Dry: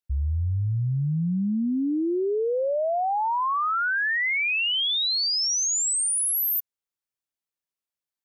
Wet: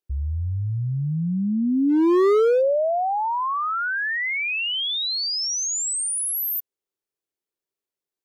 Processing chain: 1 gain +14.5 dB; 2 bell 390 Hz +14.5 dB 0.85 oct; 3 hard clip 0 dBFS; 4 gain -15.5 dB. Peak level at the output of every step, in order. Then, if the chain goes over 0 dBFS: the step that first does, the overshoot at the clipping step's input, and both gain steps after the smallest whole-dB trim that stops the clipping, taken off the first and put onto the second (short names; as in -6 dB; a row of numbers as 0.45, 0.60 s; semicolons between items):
-7.0, +7.5, 0.0, -15.5 dBFS; step 2, 7.5 dB; step 1 +6.5 dB, step 4 -7.5 dB